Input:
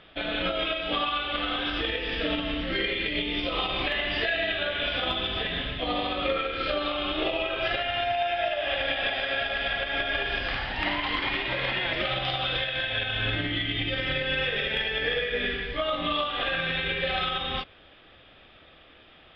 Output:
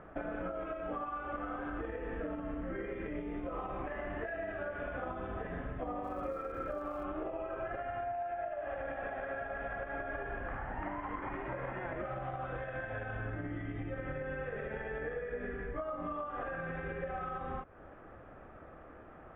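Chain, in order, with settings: inverse Chebyshev low-pass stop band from 4800 Hz, stop band 60 dB; compressor 6:1, threshold -41 dBFS, peak gain reduction 16 dB; 6.03–7.03 crackle 440/s -62 dBFS; gain +4 dB

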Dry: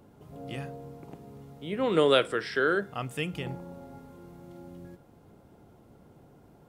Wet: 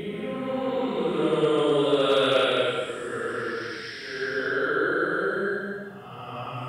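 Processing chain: Paulstretch 5×, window 0.25 s, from 1.69; overloaded stage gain 13.5 dB

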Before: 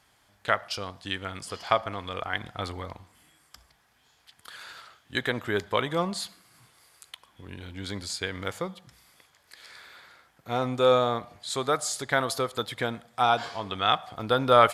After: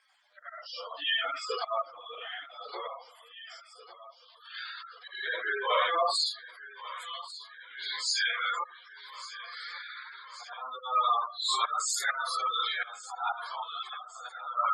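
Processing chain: phase scrambler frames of 0.2 s; auto swell 0.406 s; hard clip -28 dBFS, distortion -11 dB; weighting filter A; random-step tremolo 1.1 Hz, depth 80%; tilt +2 dB/oct; thinning echo 1.144 s, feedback 69%, high-pass 180 Hz, level -16 dB; spectral gate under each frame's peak -10 dB strong; high-pass sweep 440 Hz -> 1000 Hz, 4.33–7.5; gain +5 dB; Opus 24 kbps 48000 Hz

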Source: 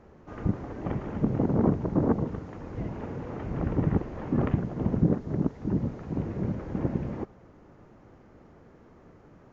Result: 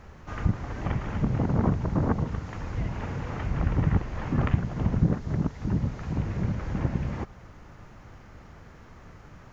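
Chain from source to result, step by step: bell 360 Hz -15 dB 2.7 oct; in parallel at -1.5 dB: compressor, threshold -44 dBFS, peak gain reduction 17.5 dB; on the sum: gain +8 dB

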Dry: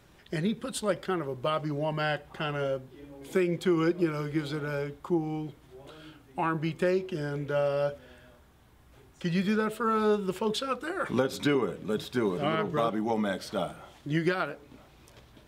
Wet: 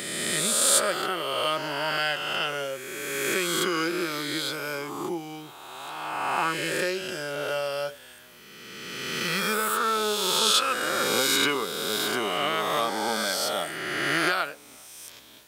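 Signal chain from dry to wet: spectral swells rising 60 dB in 2.23 s; tilt +4 dB/oct

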